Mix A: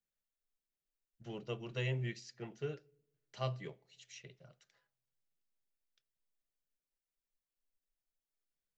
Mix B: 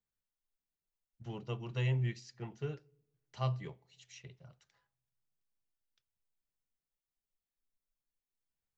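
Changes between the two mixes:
second voice: add drawn EQ curve 270 Hz 0 dB, 610 Hz −3 dB, 900 Hz +6 dB, 1,500 Hz −1 dB
master: add parametric band 80 Hz +12.5 dB 1.2 octaves

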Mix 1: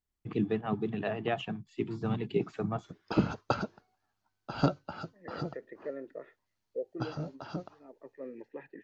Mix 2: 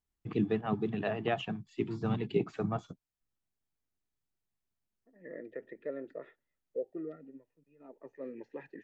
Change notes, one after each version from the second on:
second voice: add bass and treble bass +2 dB, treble +8 dB
background: muted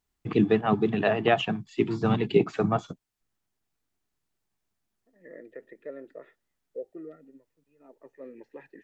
first voice +10.5 dB
master: add low-shelf EQ 220 Hz −5.5 dB

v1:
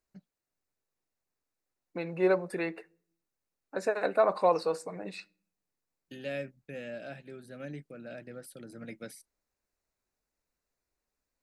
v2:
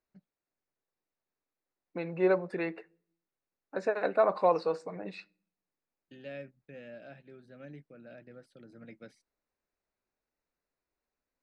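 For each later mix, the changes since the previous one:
first voice −6.0 dB
master: add high-frequency loss of the air 140 metres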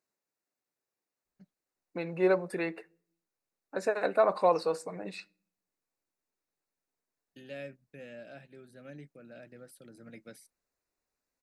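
first voice: entry +1.25 s
master: remove high-frequency loss of the air 140 metres

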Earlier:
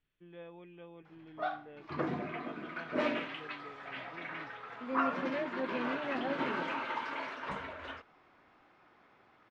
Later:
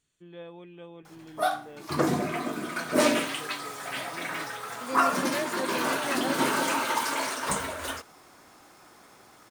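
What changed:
second voice: add spectral tilt +2.5 dB per octave
background +4.0 dB
master: remove transistor ladder low-pass 3,400 Hz, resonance 25%

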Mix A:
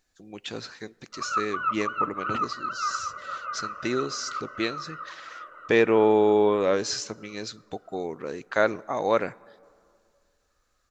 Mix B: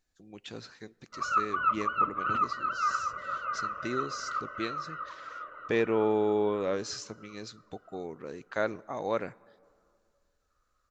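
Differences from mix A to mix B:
speech −8.5 dB
master: add low-shelf EQ 240 Hz +5.5 dB

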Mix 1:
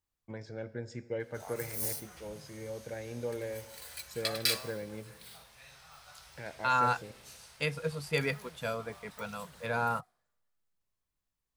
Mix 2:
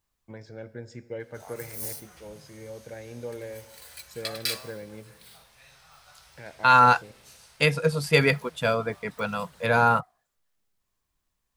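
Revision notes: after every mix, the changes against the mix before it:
second voice +11.0 dB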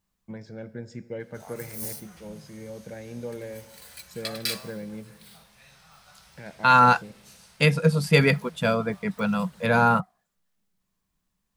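master: add parametric band 190 Hz +14 dB 0.5 octaves

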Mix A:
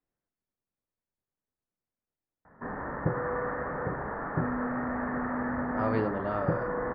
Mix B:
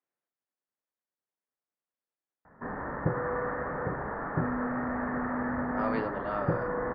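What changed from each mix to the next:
speech: add meter weighting curve A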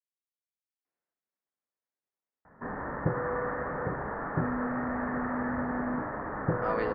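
speech: entry +0.85 s

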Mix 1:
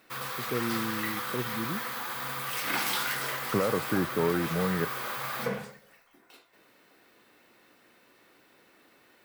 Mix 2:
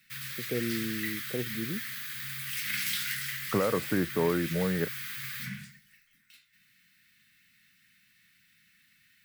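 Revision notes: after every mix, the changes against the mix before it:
background: add Chebyshev band-stop filter 180–1,800 Hz, order 3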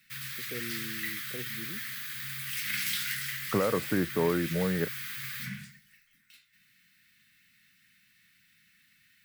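first voice −9.0 dB

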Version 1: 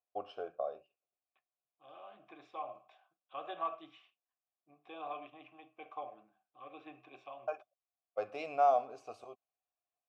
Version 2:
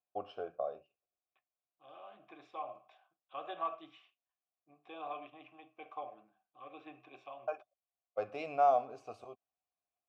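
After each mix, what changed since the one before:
first voice: add bass and treble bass +6 dB, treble −3 dB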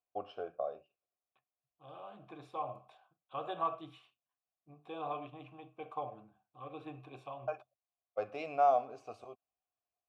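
second voice: remove loudspeaker in its box 380–6,000 Hz, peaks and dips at 470 Hz −7 dB, 920 Hz −7 dB, 1,400 Hz −3 dB, 2,000 Hz +5 dB, 4,200 Hz −7 dB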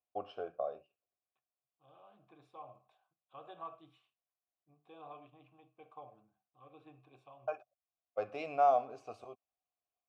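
second voice −11.5 dB

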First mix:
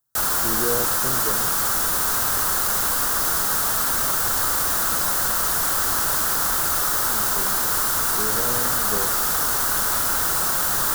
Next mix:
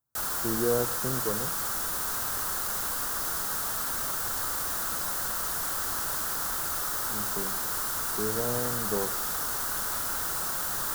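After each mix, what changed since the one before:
background −9.5 dB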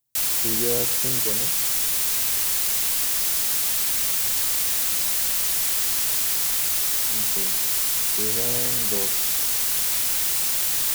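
master: add high shelf with overshoot 1,800 Hz +9 dB, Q 3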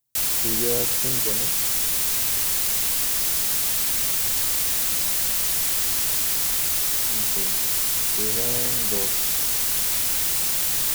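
background: add low-shelf EQ 400 Hz +5.5 dB

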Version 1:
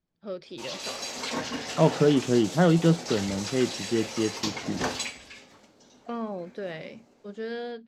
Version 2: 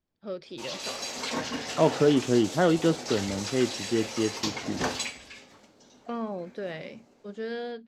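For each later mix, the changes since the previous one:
second voice: add parametric band 170 Hz −11 dB 0.23 octaves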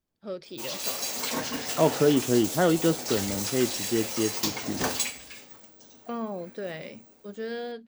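master: remove low-pass filter 5,500 Hz 12 dB per octave

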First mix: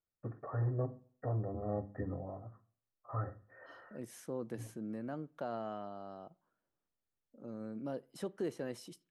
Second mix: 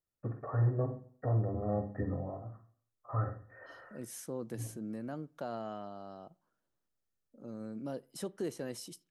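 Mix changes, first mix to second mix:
first voice: send +11.0 dB
master: add bass and treble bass +2 dB, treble +9 dB

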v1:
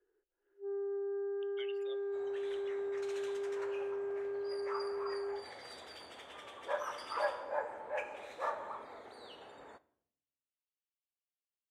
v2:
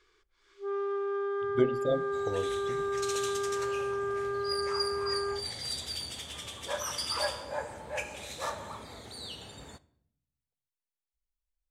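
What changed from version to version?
speech: remove high-pass with resonance 2,900 Hz, resonance Q 8
first sound: remove moving average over 39 samples
master: remove three-way crossover with the lows and the highs turned down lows −23 dB, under 330 Hz, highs −21 dB, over 2,100 Hz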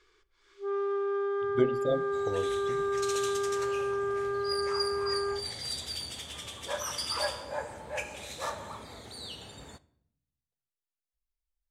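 first sound: send +10.0 dB

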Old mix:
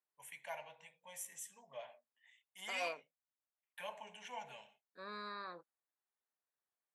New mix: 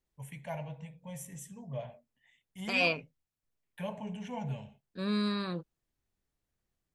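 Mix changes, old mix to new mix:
second voice: remove moving average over 15 samples
master: remove high-pass filter 940 Hz 12 dB per octave

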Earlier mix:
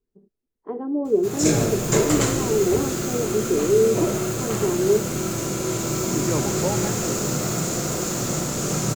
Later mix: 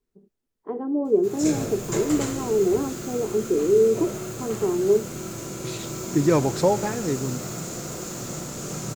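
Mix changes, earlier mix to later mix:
second voice +7.0 dB
background −8.0 dB

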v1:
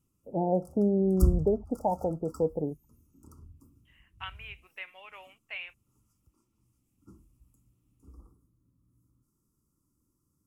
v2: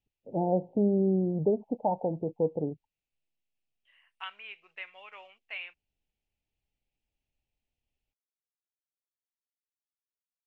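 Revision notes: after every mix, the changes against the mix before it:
background: muted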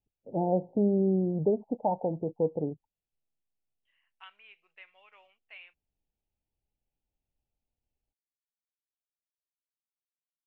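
second voice −10.0 dB

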